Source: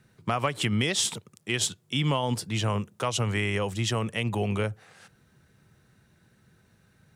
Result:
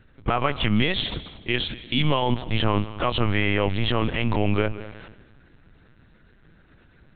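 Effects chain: in parallel at +2 dB: peak limiter -21.5 dBFS, peak gain reduction 9.5 dB; 3.45–4.49 s: on the sum: transient shaper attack -3 dB, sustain +7 dB; reverberation RT60 1.1 s, pre-delay 149 ms, DRR 14 dB; LPC vocoder at 8 kHz pitch kept

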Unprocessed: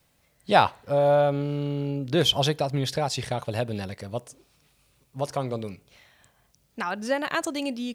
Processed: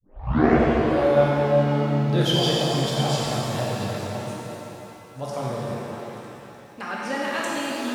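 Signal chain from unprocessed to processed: tape start-up on the opening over 0.95 s; repeats whose band climbs or falls 176 ms, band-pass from 170 Hz, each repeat 1.4 oct, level -2.5 dB; pitch-shifted reverb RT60 2.7 s, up +7 st, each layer -8 dB, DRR -5.5 dB; trim -5.5 dB

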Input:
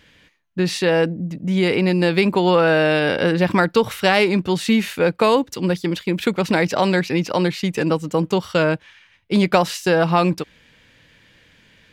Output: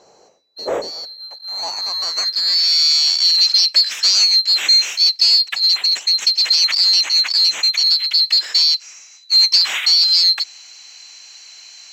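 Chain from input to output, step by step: split-band scrambler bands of 4 kHz; power-law waveshaper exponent 0.7; band-pass sweep 510 Hz -> 2.6 kHz, 1.03–2.87 s; trim +8.5 dB

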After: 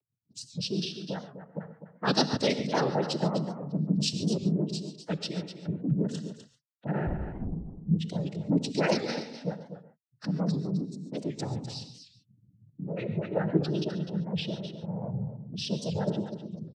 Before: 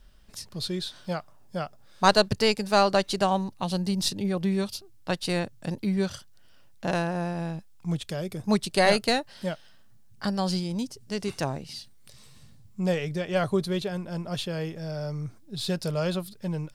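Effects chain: spectral gate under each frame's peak -15 dB strong; peaking EQ 920 Hz -13.5 dB 0.98 oct; square tremolo 0.54 Hz, depth 60%, duty 85%; noise-vocoded speech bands 12; 7.07–7.53 s: LPC vocoder at 8 kHz whisper; delay 252 ms -10.5 dB; gated-style reverb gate 160 ms rising, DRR 10 dB; warped record 78 rpm, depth 160 cents

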